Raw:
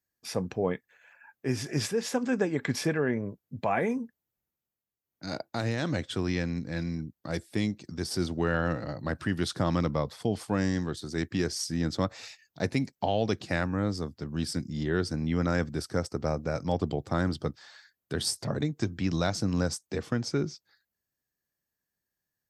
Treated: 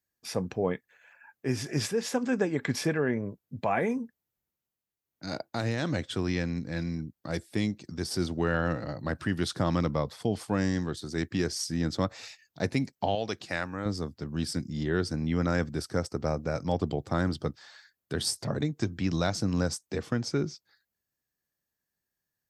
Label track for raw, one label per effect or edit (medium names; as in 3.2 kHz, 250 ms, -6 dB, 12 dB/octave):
13.150000	13.860000	bass shelf 430 Hz -10 dB